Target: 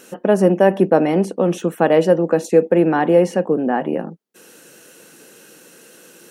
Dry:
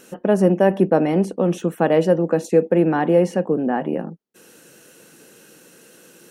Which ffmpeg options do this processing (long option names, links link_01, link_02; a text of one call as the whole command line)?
ffmpeg -i in.wav -af "lowshelf=frequency=140:gain=-9.5,volume=3.5dB" out.wav